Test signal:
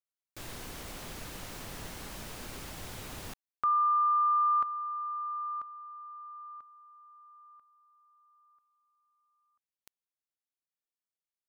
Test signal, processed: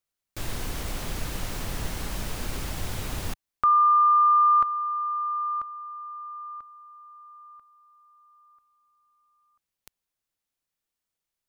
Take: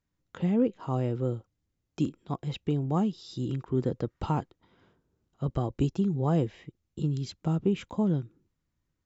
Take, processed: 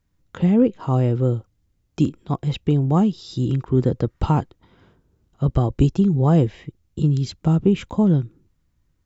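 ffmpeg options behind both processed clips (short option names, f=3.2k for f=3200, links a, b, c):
-af "lowshelf=f=100:g=10,volume=7.5dB"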